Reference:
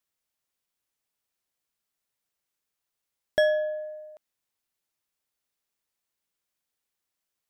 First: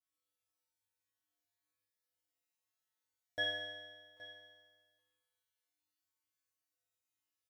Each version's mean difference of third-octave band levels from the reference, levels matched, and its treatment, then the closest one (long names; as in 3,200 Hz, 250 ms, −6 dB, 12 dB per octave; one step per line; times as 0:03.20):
9.0 dB: tuned comb filter 100 Hz, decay 1.5 s, harmonics odd, mix 100%
single-tap delay 820 ms −17 dB
level +13 dB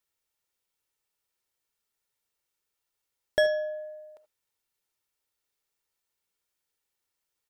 1.0 dB: comb filter 2.2 ms, depth 35%
reverb whose tail is shaped and stops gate 100 ms rising, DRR 11.5 dB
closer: second